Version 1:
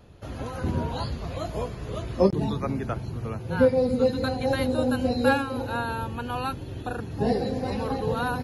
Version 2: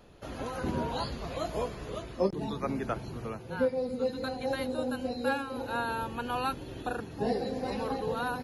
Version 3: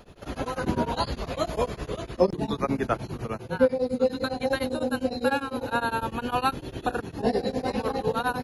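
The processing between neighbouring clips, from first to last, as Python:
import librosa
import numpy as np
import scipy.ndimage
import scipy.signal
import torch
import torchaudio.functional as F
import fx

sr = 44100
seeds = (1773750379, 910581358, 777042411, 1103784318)

y1 = fx.peak_eq(x, sr, hz=92.0, db=-10.5, octaves=1.6)
y1 = fx.rider(y1, sr, range_db=4, speed_s=0.5)
y1 = y1 * librosa.db_to_amplitude(-4.5)
y2 = y1 * np.abs(np.cos(np.pi * 9.9 * np.arange(len(y1)) / sr))
y2 = y2 * librosa.db_to_amplitude(8.5)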